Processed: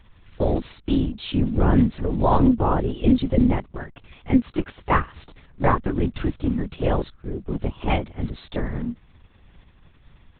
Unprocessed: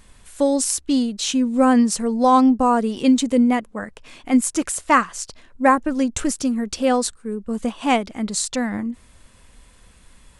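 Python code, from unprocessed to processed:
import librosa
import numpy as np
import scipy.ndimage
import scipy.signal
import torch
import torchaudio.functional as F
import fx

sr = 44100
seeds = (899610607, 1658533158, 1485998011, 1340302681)

p1 = fx.block_float(x, sr, bits=5)
p2 = fx.low_shelf(p1, sr, hz=300.0, db=5.5)
p3 = np.sign(p2) * np.maximum(np.abs(p2) - 10.0 ** (-35.0 / 20.0), 0.0)
p4 = p2 + F.gain(torch.from_numpy(p3), -10.0).numpy()
p5 = fx.lpc_vocoder(p4, sr, seeds[0], excitation='whisper', order=10)
p6 = fx.doppler_dist(p5, sr, depth_ms=0.16)
y = F.gain(torch.from_numpy(p6), -7.0).numpy()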